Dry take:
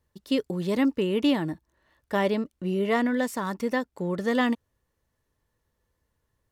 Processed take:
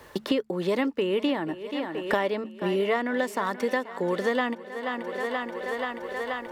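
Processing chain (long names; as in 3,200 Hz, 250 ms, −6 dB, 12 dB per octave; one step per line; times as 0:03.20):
bass and treble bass −14 dB, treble −8 dB
hum removal 72.96 Hz, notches 3
on a send: feedback echo with a high-pass in the loop 481 ms, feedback 65%, high-pass 190 Hz, level −17 dB
on the sum: multiband upward and downward compressor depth 100%
level +2.5 dB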